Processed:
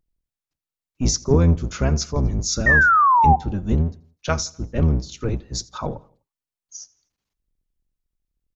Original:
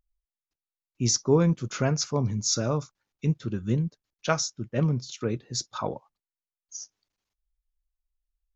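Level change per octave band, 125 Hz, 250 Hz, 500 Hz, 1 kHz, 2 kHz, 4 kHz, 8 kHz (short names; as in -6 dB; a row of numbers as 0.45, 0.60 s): +5.5 dB, +4.0 dB, +2.0 dB, +17.5 dB, +19.5 dB, +1.5 dB, n/a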